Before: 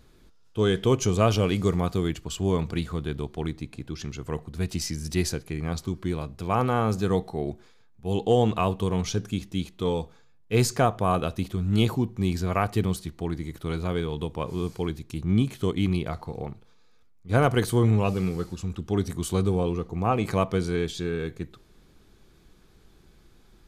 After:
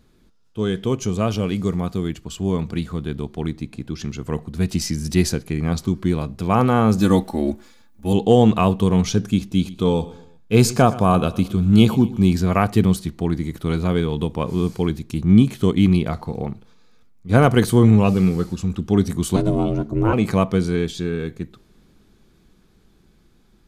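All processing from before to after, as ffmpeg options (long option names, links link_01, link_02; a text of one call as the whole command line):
ffmpeg -i in.wav -filter_complex "[0:a]asettb=1/sr,asplit=3[link_01][link_02][link_03];[link_01]atrim=end=7.004[link_04];[link_02]atrim=start=7:end=8.13,asetpts=PTS-STARTPTS,afade=type=in:duration=0.004:curve=qsin,afade=type=out:start_time=1.126:duration=0.004:curve=qsin,highshelf=frequency=8700:gain=11,aecho=1:1:3.5:0.83,atrim=end_sample=49833,aeval=exprs='sgn(val(0))*max(abs(val(0))-0.00141,0)':channel_layout=same[link_05];[link_03]atrim=start=8.126[link_06];[link_04][link_05]acrossfade=duration=0.004:curve1=hsin:curve2=qsin[link_07];[link_07][link_06]acrossfade=duration=0.004:curve1=qsin:curve2=hsin,asettb=1/sr,asplit=3[link_08][link_09][link_10];[link_08]atrim=end=9.394[link_11];[link_09]atrim=start=9.39:end=12.31,asetpts=PTS-STARTPTS,afade=type=in:duration=0.004:curve=qsin,afade=type=out:start_time=2.916:duration=0.004:curve=qsin,bandreject=frequency=1900:width=7.6,aecho=1:1:120|240|360:0.126|0.0504|0.0201,atrim=end_sample=128772[link_12];[link_10]atrim=start=12.306[link_13];[link_11][link_12]acrossfade=duration=0.004:curve1=hsin:curve2=qsin[link_14];[link_14][link_13]acrossfade=duration=0.004:curve1=qsin:curve2=hsin,asettb=1/sr,asplit=3[link_15][link_16][link_17];[link_15]atrim=end=19.364[link_18];[link_16]atrim=start=19.36:end=20.13,asetpts=PTS-STARTPTS,afade=type=in:duration=0.004:curve=qsin,afade=type=out:start_time=0.766:duration=0.004:curve=qsin,asubboost=boost=10.5:cutoff=180,aeval=exprs='val(0)*sin(2*PI*220*n/s)':channel_layout=same[link_19];[link_17]atrim=start=20.126[link_20];[link_18][link_19]acrossfade=duration=0.004:curve1=hsin:curve2=qsin[link_21];[link_21][link_20]acrossfade=duration=0.004:curve1=qsin:curve2=hsin,dynaudnorm=framelen=650:gausssize=11:maxgain=11.5dB,equalizer=frequency=210:width_type=o:width=0.85:gain=6.5,volume=-2dB" out.wav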